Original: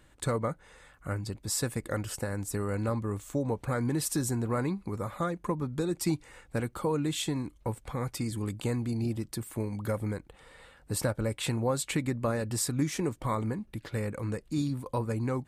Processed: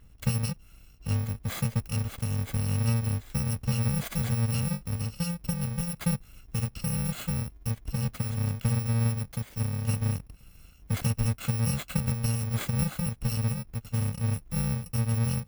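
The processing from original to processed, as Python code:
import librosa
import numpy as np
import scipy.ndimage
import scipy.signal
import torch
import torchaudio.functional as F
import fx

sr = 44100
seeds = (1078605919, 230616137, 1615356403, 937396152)

y = fx.bit_reversed(x, sr, seeds[0], block=128)
y = fx.bass_treble(y, sr, bass_db=10, treble_db=-8)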